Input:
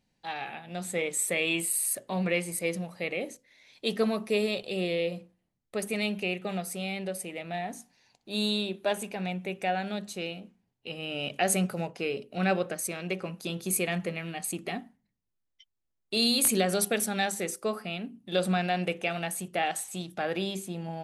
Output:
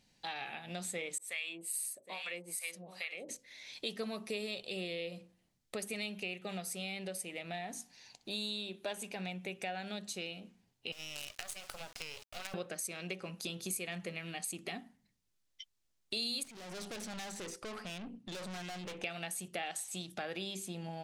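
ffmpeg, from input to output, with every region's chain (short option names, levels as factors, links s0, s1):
-filter_complex "[0:a]asettb=1/sr,asplit=3[s0][s1][s2];[s0]atrim=end=1.184[s3];[s1]atrim=start=1.18:end=3.29,asetpts=PTS-STARTPTS,afade=t=in:d=0.004:c=qsin,afade=t=out:st=2.106:d=0.004:c=qsin,highpass=f=640:p=1,aecho=1:1:765:0.211,atrim=end_sample=93051,acrossover=split=710[s4][s5];[s4]aeval=exprs='val(0)*(1-1/2+1/2*cos(2*PI*2.4*n/s))':c=same[s6];[s5]aeval=exprs='val(0)*(1-1/2-1/2*cos(2*PI*2.4*n/s))':c=same[s7];[s6][s7]amix=inputs=2:normalize=0[s8];[s2]atrim=start=3.286[s9];[s3][s8]acrossfade=d=0.004:c1=hsin:c2=qsin[s10];[s10][s9]acrossfade=d=0.004:c1=qsin:c2=hsin,asettb=1/sr,asplit=3[s11][s12][s13];[s11]atrim=end=10.924[s14];[s12]atrim=start=10.92:end=12.54,asetpts=PTS-STARTPTS,afade=t=in:d=0.004:c=qsin,afade=t=out:st=1.616:d=0.004:c=qsin,highpass=f=600:w=0.5412,highpass=f=600:w=1.3066,acompressor=threshold=0.02:ratio=16:attack=3.2:release=140:knee=1:detection=peak,acrusher=bits=6:dc=4:mix=0:aa=0.000001[s15];[s13]atrim=start=12.536[s16];[s14][s15]acrossfade=d=0.004:c1=hsin:c2=qsin[s17];[s17][s16]acrossfade=d=0.004:c1=qsin:c2=hsin,asettb=1/sr,asplit=3[s18][s19][s20];[s18]atrim=end=16.434[s21];[s19]atrim=start=16.43:end=19.04,asetpts=PTS-STARTPTS,afade=t=in:d=0.004:c=qsin,afade=t=out:st=2.606:d=0.004:c=qsin,aemphasis=mode=reproduction:type=50fm,acrossover=split=6200[s22][s23];[s23]acompressor=threshold=0.00316:ratio=4:attack=1:release=60[s24];[s22][s24]amix=inputs=2:normalize=0,aeval=exprs='(tanh(112*val(0)+0.4)-tanh(0.4))/112':c=same[s25];[s20]atrim=start=19.036[s26];[s21][s25]acrossfade=d=0.004:c1=hsin:c2=qsin[s27];[s27][s26]acrossfade=d=0.004:c1=qsin:c2=hsin,equalizer=f=5400:w=0.44:g=8,acompressor=threshold=0.00631:ratio=3,volume=1.26"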